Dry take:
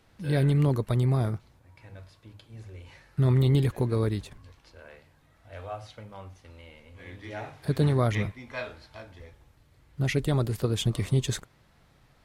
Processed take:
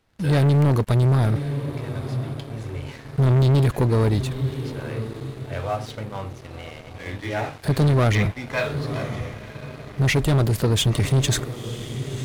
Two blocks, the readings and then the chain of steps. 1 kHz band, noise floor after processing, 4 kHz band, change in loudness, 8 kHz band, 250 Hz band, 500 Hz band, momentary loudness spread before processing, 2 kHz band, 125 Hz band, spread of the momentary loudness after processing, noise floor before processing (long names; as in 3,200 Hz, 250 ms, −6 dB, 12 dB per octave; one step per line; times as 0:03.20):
+9.0 dB, −41 dBFS, +9.0 dB, +4.5 dB, can't be measured, +6.0 dB, +6.5 dB, 22 LU, +9.5 dB, +7.0 dB, 16 LU, −62 dBFS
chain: feedback delay with all-pass diffusion 1,006 ms, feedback 41%, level −15 dB
leveller curve on the samples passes 3